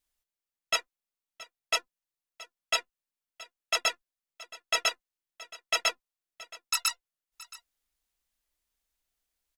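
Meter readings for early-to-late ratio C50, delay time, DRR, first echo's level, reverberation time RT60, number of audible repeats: none, 0.673 s, none, -19.0 dB, none, 1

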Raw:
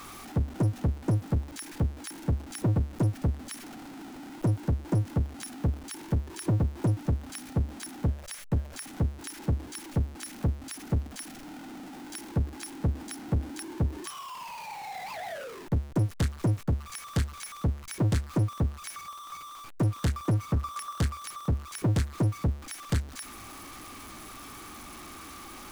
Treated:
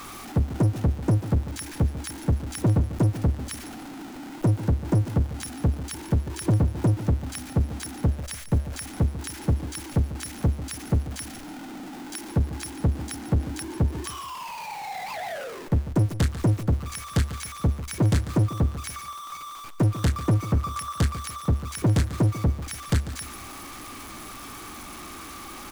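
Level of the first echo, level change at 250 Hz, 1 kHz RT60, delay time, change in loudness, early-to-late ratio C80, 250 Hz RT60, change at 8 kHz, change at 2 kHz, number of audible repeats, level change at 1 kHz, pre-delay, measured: -13.5 dB, +4.5 dB, none, 0.144 s, +4.5 dB, none, none, +4.5 dB, +4.5 dB, 3, +4.5 dB, none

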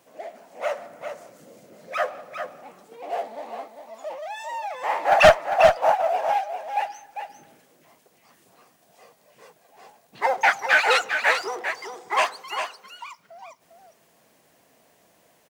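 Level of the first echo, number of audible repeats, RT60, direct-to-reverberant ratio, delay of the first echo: -7.5 dB, 1, none, none, 0.4 s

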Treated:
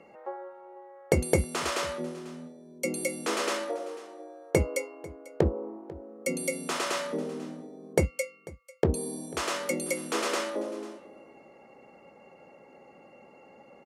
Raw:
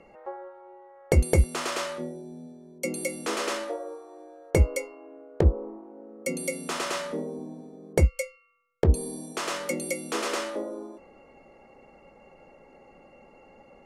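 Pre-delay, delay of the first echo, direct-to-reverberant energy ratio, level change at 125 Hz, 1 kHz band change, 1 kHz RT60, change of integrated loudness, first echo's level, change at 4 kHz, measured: none, 0.494 s, none, -7.0 dB, 0.0 dB, none, -2.5 dB, -20.0 dB, 0.0 dB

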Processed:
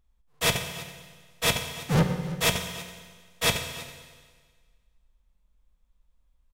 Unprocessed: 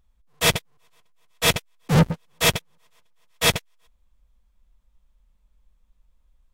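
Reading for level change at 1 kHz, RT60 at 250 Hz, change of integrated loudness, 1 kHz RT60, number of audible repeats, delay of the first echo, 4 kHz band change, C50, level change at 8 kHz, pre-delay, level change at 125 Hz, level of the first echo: -4.0 dB, 1.6 s, -5.0 dB, 1.5 s, 1, 0.326 s, -4.5 dB, 7.5 dB, -4.0 dB, 16 ms, -4.5 dB, -18.0 dB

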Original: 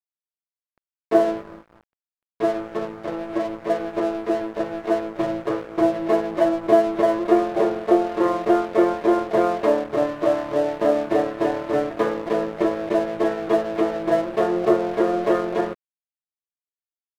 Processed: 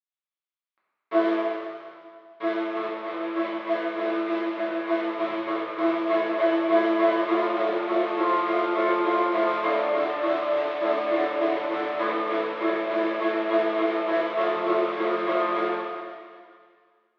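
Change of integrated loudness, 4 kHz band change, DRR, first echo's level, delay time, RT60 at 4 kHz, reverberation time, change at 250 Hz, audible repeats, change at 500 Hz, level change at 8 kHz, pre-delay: -3.0 dB, +2.0 dB, -8.0 dB, none, none, 2.0 s, 2.0 s, -4.0 dB, none, -4.0 dB, n/a, 4 ms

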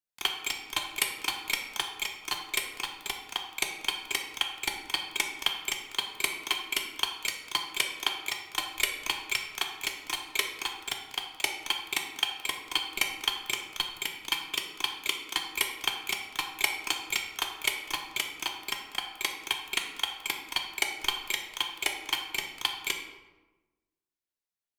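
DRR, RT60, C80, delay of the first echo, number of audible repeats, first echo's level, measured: 2.5 dB, 1.2 s, 8.5 dB, none, none, none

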